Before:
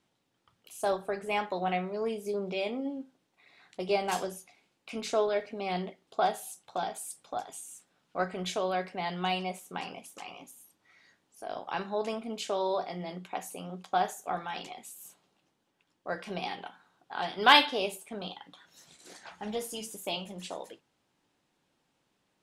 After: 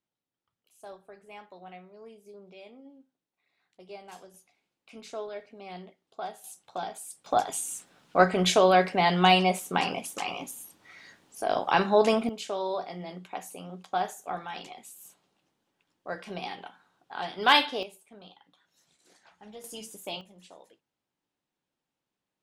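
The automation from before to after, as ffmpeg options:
ffmpeg -i in.wav -af "asetnsamples=nb_out_samples=441:pad=0,asendcmd='4.34 volume volume -9.5dB;6.44 volume volume -1.5dB;7.26 volume volume 11dB;12.29 volume volume -1dB;17.83 volume volume -11.5dB;19.64 volume volume -2.5dB;20.21 volume volume -12dB',volume=-16dB" out.wav

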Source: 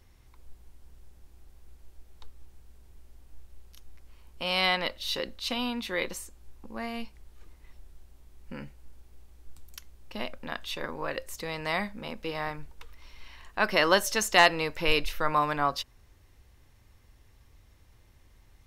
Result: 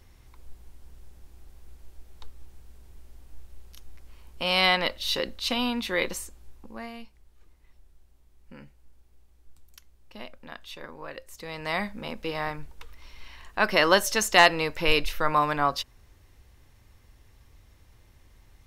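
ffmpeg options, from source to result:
ffmpeg -i in.wav -af "volume=13dB,afade=type=out:start_time=6.23:duration=0.76:silence=0.298538,afade=type=in:start_time=11.31:duration=0.6:silence=0.354813" out.wav

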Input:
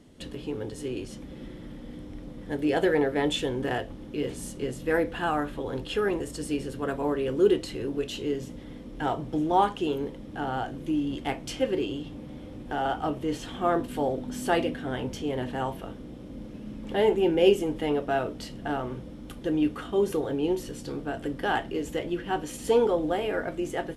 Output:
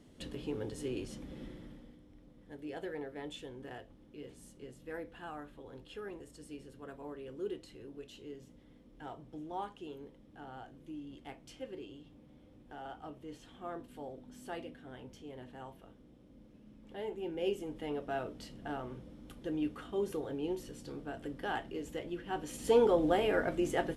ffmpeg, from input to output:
ffmpeg -i in.wav -af "volume=11.5dB,afade=type=out:start_time=1.41:duration=0.57:silence=0.223872,afade=type=in:start_time=17.1:duration=1.13:silence=0.398107,afade=type=in:start_time=22.27:duration=0.81:silence=0.375837" out.wav

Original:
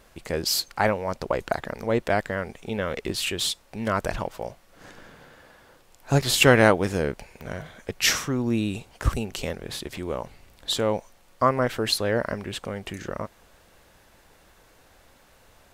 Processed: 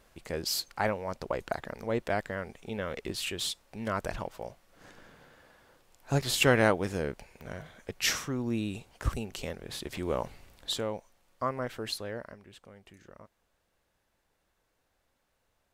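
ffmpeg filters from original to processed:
ffmpeg -i in.wav -af "afade=type=in:start_time=9.67:duration=0.55:silence=0.446684,afade=type=out:start_time=10.22:duration=0.69:silence=0.281838,afade=type=out:start_time=11.9:duration=0.48:silence=0.354813" out.wav

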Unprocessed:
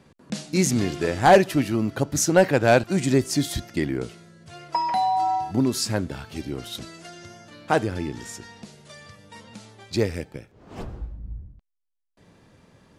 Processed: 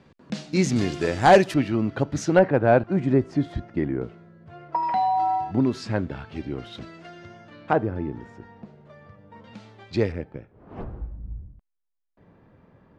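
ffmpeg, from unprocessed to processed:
ffmpeg -i in.wav -af "asetnsamples=nb_out_samples=441:pad=0,asendcmd='0.76 lowpass f 7900;1.54 lowpass f 3200;2.39 lowpass f 1400;4.83 lowpass f 2600;7.73 lowpass f 1200;9.44 lowpass f 3200;10.12 lowpass f 1600',lowpass=4600" out.wav

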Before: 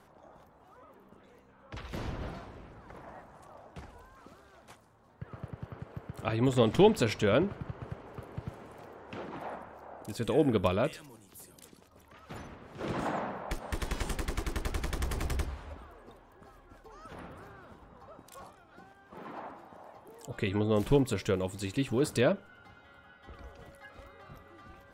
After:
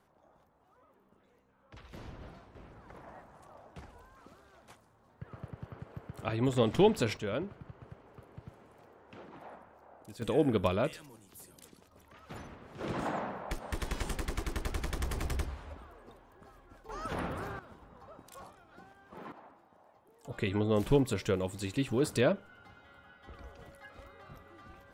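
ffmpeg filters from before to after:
ffmpeg -i in.wav -af "asetnsamples=nb_out_samples=441:pad=0,asendcmd='2.55 volume volume -2.5dB;7.17 volume volume -9dB;10.22 volume volume -1.5dB;16.89 volume volume 10dB;17.59 volume volume -1dB;19.32 volume volume -11.5dB;20.25 volume volume -1dB',volume=-9.5dB" out.wav

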